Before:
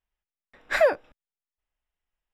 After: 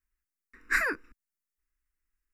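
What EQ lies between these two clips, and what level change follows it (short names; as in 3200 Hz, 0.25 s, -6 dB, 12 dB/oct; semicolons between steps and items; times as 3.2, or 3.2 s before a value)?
fixed phaser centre 320 Hz, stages 4; fixed phaser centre 1400 Hz, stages 4; +5.0 dB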